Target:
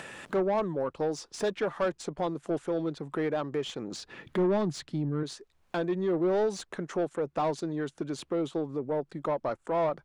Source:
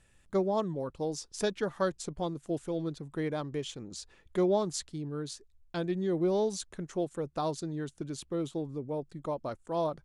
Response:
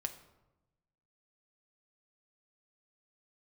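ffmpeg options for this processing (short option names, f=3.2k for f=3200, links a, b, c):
-filter_complex "[0:a]asettb=1/sr,asplit=3[a][b][c];[a]atrim=end=3.974[d];[b]atrim=start=3.97:end=5.23,asetpts=PTS-STARTPTS,afade=t=in:d=0.004:c=qsin,afade=t=out:st=1.256:d=0.004:c=qsin,equalizer=f=125:t=o:w=1:g=10,equalizer=f=250:t=o:w=1:g=5,equalizer=f=500:t=o:w=1:g=-4,equalizer=f=1k:t=o:w=1:g=-4,equalizer=f=8k:t=o:w=1:g=-5[e];[c]atrim=start=5.226[f];[d][e]acrossfade=d=0.004:c1=hsin:c2=qsin[g];[g][f]acrossfade=d=0.004:c1=qsin:c2=hsin,acrossover=split=110[h][i];[i]acompressor=mode=upward:threshold=-32dB:ratio=2.5[j];[h][j]amix=inputs=2:normalize=0,asplit=2[k][l];[l]highpass=f=720:p=1,volume=22dB,asoftclip=type=tanh:threshold=-13dB[m];[k][m]amix=inputs=2:normalize=0,lowpass=f=1.3k:p=1,volume=-6dB,volume=-4dB"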